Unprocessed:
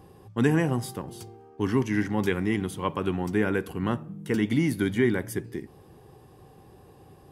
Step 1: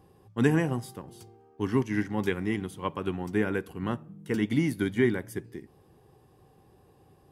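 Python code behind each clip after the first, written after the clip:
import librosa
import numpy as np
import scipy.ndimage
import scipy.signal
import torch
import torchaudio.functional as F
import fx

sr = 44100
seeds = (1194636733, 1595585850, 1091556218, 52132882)

y = fx.upward_expand(x, sr, threshold_db=-33.0, expansion=1.5)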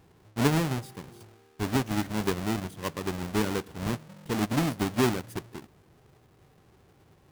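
y = fx.halfwave_hold(x, sr)
y = y * 10.0 ** (-5.0 / 20.0)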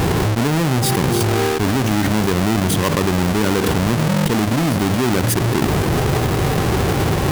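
y = fx.env_flatten(x, sr, amount_pct=100)
y = y * 10.0 ** (2.5 / 20.0)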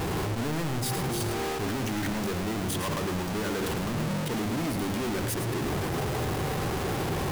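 y = 10.0 ** (-25.0 / 20.0) * np.tanh(x / 10.0 ** (-25.0 / 20.0))
y = y + 10.0 ** (-8.5 / 20.0) * np.pad(y, (int(108 * sr / 1000.0), 0))[:len(y)]
y = y * 10.0 ** (-4.0 / 20.0)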